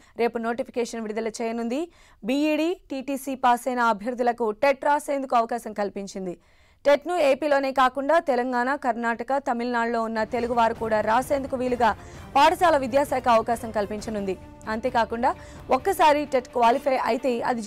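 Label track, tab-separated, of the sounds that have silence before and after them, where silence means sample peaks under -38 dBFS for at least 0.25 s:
2.240000	6.340000	sound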